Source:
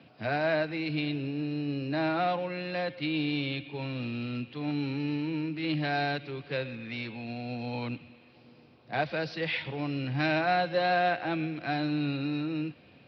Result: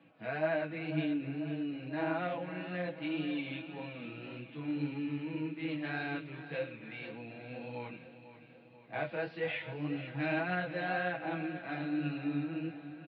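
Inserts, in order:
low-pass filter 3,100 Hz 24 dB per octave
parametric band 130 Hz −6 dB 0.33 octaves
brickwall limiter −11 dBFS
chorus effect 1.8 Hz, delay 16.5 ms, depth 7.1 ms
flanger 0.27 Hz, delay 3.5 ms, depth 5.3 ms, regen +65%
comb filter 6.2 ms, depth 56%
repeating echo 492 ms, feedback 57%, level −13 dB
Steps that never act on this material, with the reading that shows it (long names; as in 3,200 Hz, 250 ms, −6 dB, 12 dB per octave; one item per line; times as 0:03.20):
brickwall limiter −11 dBFS: peak of its input −16.5 dBFS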